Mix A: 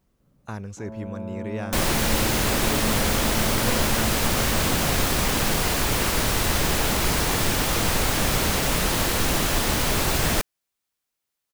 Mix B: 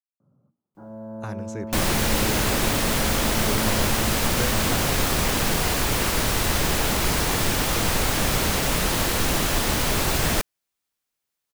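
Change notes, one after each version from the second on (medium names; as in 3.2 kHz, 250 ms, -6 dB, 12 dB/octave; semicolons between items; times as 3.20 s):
speech: entry +0.75 s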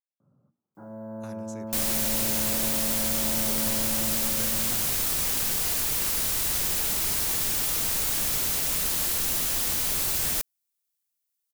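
first sound +12.0 dB; master: add pre-emphasis filter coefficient 0.8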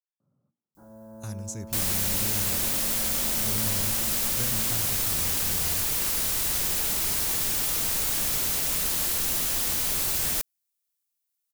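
speech: add tone controls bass +15 dB, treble +12 dB; first sound -7.5 dB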